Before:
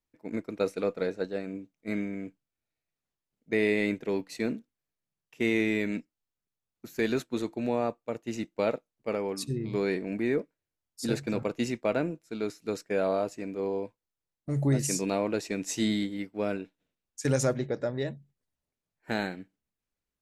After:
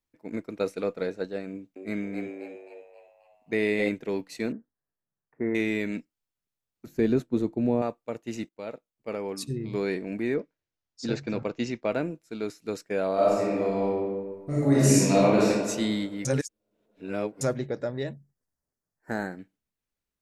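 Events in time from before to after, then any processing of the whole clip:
1.49–3.89 frequency-shifting echo 0.266 s, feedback 45%, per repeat +88 Hz, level -5 dB
4.52–5.55 elliptic low-pass 1800 Hz
6.86–7.82 tilt shelf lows +8.5 dB, about 680 Hz
8.49–9.38 fade in, from -15.5 dB
10.34–11.91 steep low-pass 6600 Hz
13.14–15.47 reverb throw, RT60 1.6 s, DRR -7.5 dB
16.25–17.41 reverse
18.13–19.39 band shelf 3000 Hz -16 dB 1 oct

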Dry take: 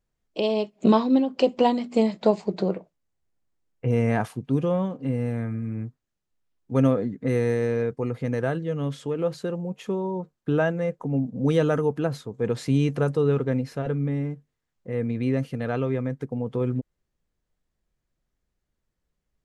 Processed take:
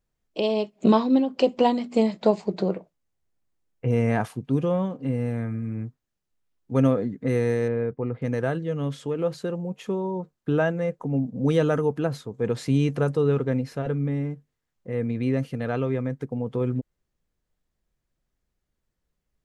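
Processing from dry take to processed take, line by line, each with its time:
7.68–8.22 air absorption 450 m

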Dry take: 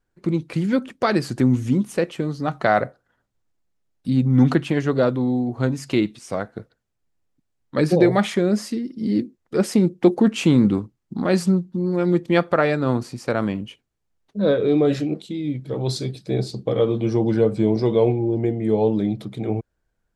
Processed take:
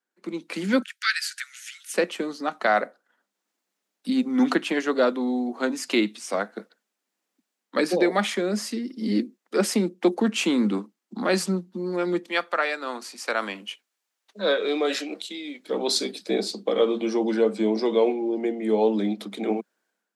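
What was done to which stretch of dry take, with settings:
0.82–1.94 steep high-pass 1400 Hz 72 dB/oct
12.29–15.69 HPF 1000 Hz 6 dB/oct
whole clip: steep high-pass 190 Hz 72 dB/oct; tilt shelf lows -4.5 dB, about 660 Hz; AGC; gain -7.5 dB

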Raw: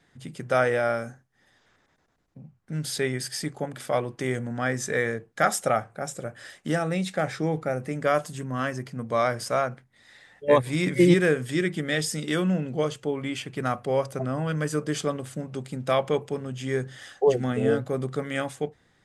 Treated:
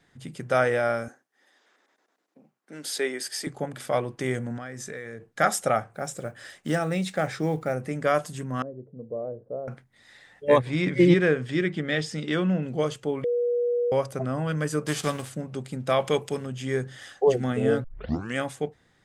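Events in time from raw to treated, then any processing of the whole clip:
1.08–3.47 HPF 280 Hz 24 dB/oct
4.57–5.26 compressor 5:1, threshold -34 dBFS
5.94–7.76 block floating point 7-bit
8.62–9.68 ladder low-pass 540 Hz, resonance 60%
10.59–12.63 LPF 4400 Hz
13.24–13.92 bleep 482 Hz -21.5 dBFS
14.85–15.29 spectral whitening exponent 0.6
16–16.46 high shelf 2100 Hz +10 dB
17.84 tape start 0.53 s

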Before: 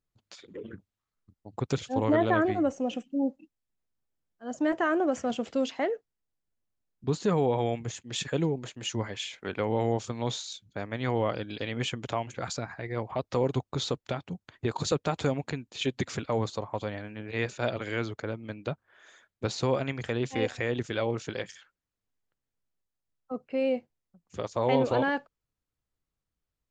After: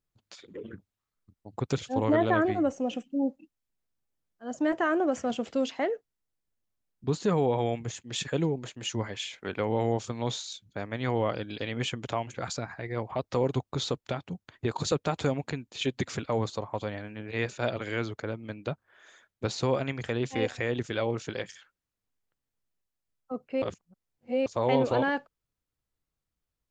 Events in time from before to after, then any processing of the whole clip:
23.62–24.46 reverse

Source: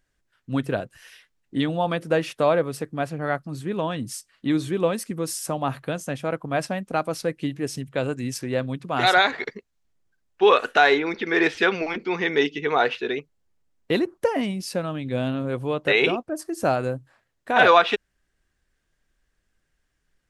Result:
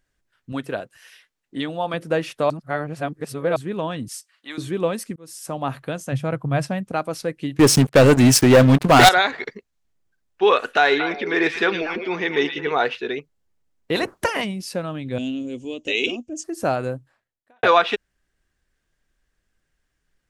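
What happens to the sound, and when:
0.52–1.94 low shelf 190 Hz -12 dB
2.5–3.56 reverse
4.08–4.58 HPF 850 Hz
5.16–5.61 fade in
6.12–6.92 bell 130 Hz +13.5 dB 0.73 oct
7.59–9.09 sample leveller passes 5
10.62–12.72 delay with a stepping band-pass 0.114 s, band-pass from 2900 Hz, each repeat -1.4 oct, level -4 dB
13.95–14.43 spectral limiter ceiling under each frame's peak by 21 dB
15.18–16.44 EQ curve 100 Hz 0 dB, 150 Hz -21 dB, 240 Hz +3 dB, 1400 Hz -24 dB, 2900 Hz +5 dB, 4200 Hz -5 dB, 6800 Hz +14 dB, 11000 Hz -18 dB
16.94–17.63 fade out quadratic

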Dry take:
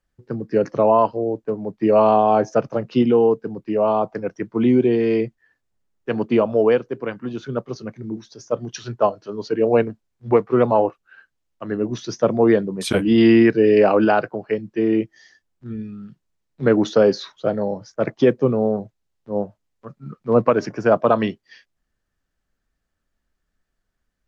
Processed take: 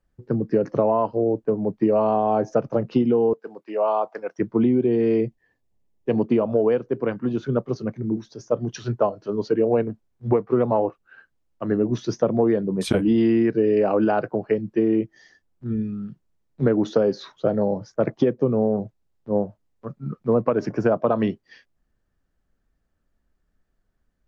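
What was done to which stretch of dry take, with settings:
3.33–4.39 HPF 710 Hz
5.25–6.24 bell 1400 Hz -15 dB 0.36 oct
whole clip: tilt shelf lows +5 dB, about 1200 Hz; compressor, threshold -16 dBFS

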